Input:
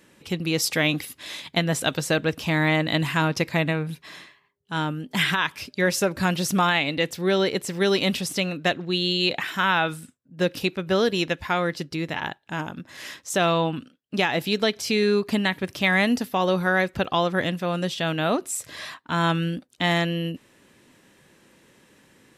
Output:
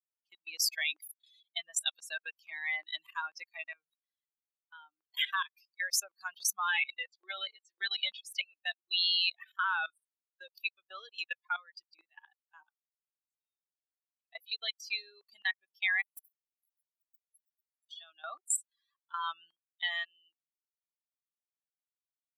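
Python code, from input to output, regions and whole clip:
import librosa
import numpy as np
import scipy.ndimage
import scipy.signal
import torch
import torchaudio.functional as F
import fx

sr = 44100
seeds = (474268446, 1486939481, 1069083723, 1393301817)

y = fx.chain(x, sr, fx.bandpass_edges(low_hz=190.0, high_hz=4700.0),
    fx.doubler(ms=14.0, db=-7), at=(6.66, 8.26))
y = fx.chain(y, sr, fx.tone_stack(knobs='10-0-1'),
    fx.sustainer(db_per_s=110.0), at=(12.72, 14.33))
y = fx.chain(y, sr, fx.halfwave_gain(db=-7.0),
    fx.cheby2_highpass(hz=2000.0, order=4, stop_db=70),
    fx.transient(attack_db=10, sustain_db=-1), at=(16.01, 17.9))
y = fx.bin_expand(y, sr, power=3.0)
y = fx.level_steps(y, sr, step_db=18)
y = scipy.signal.sosfilt(scipy.signal.butter(4, 1100.0, 'highpass', fs=sr, output='sos'), y)
y = y * 10.0 ** (7.5 / 20.0)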